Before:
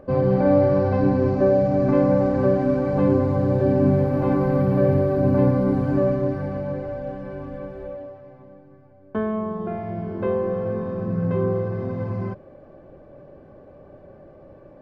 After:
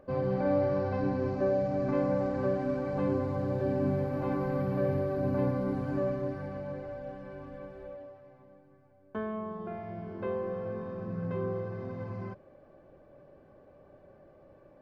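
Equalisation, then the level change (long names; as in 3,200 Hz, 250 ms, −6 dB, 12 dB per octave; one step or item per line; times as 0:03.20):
tilt shelving filter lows −3 dB, about 790 Hz
−9.0 dB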